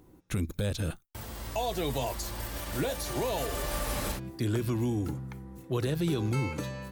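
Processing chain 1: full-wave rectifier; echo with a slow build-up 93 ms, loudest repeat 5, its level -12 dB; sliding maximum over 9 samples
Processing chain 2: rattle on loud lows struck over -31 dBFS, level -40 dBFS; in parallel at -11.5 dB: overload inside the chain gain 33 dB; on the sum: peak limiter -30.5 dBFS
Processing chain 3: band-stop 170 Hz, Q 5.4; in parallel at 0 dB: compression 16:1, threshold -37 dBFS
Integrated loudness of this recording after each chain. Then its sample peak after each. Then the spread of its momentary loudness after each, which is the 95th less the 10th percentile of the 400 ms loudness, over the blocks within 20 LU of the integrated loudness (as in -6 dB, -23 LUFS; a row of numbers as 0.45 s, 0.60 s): -36.0 LUFS, -39.0 LUFS, -30.5 LUFS; -21.5 dBFS, -30.5 dBFS, -17.0 dBFS; 5 LU, 4 LU, 7 LU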